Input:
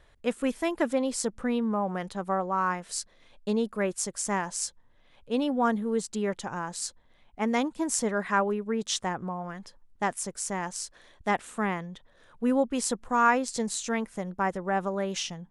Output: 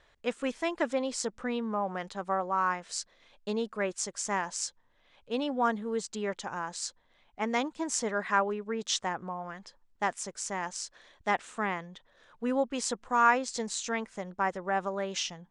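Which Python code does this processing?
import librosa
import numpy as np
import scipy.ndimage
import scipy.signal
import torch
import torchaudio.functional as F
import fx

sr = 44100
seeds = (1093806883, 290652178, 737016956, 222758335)

y = scipy.signal.sosfilt(scipy.signal.butter(4, 7600.0, 'lowpass', fs=sr, output='sos'), x)
y = fx.low_shelf(y, sr, hz=330.0, db=-9.5)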